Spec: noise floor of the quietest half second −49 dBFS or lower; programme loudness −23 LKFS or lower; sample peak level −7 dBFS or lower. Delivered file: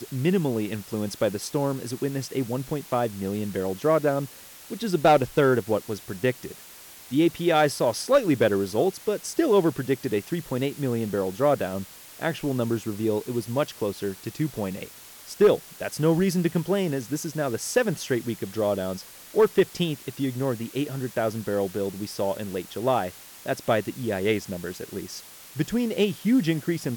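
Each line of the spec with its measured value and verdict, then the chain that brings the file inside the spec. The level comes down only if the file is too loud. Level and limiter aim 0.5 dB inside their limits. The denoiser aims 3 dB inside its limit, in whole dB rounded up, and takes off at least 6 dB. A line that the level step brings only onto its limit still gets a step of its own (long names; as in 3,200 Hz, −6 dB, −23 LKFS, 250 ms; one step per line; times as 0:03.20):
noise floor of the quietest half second −46 dBFS: out of spec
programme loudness −26.0 LKFS: in spec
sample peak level −10.5 dBFS: in spec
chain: broadband denoise 6 dB, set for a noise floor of −46 dBFS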